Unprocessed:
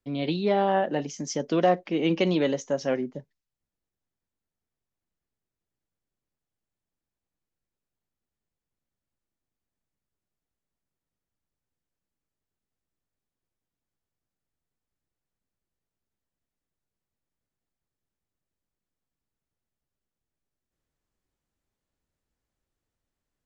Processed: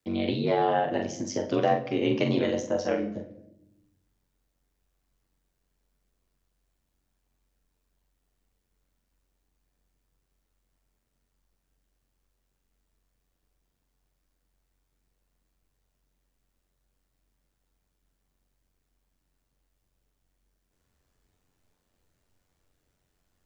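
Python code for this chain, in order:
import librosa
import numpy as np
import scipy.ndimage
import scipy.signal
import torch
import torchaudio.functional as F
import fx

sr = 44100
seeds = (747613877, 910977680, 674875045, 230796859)

y = fx.doubler(x, sr, ms=43.0, db=-6.5)
y = y * np.sin(2.0 * np.pi * 46.0 * np.arange(len(y)) / sr)
y = fx.room_shoebox(y, sr, seeds[0], volume_m3=150.0, walls='mixed', distance_m=0.35)
y = fx.band_squash(y, sr, depth_pct=40)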